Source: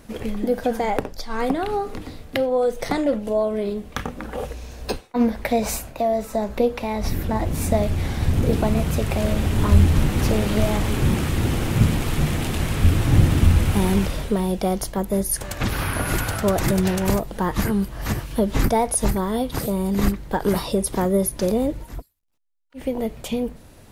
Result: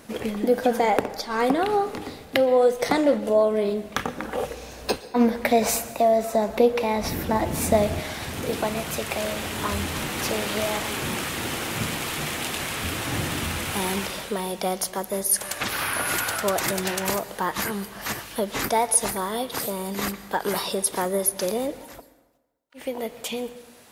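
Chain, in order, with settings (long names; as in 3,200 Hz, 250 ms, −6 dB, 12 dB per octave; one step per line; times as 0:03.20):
high-pass filter 270 Hz 6 dB per octave, from 0:08.00 960 Hz
dense smooth reverb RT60 1.1 s, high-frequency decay 0.75×, pre-delay 105 ms, DRR 16 dB
level +3 dB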